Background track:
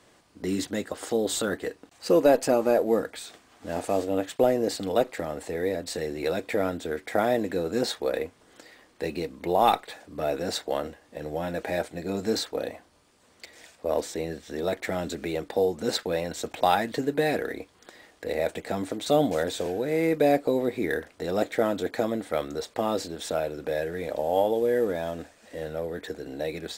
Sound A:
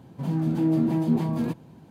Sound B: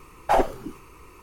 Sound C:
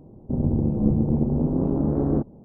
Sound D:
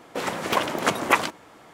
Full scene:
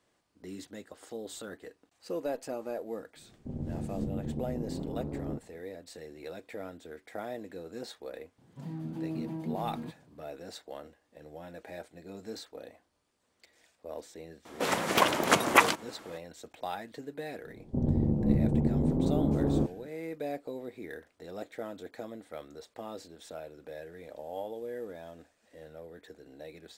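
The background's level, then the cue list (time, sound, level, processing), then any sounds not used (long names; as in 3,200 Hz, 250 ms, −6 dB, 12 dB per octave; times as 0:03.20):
background track −15 dB
0:03.16: mix in C −14.5 dB
0:08.38: mix in A −13.5 dB
0:14.45: mix in D −1.5 dB + high-shelf EQ 4,700 Hz +3.5 dB
0:17.44: mix in C −5 dB
not used: B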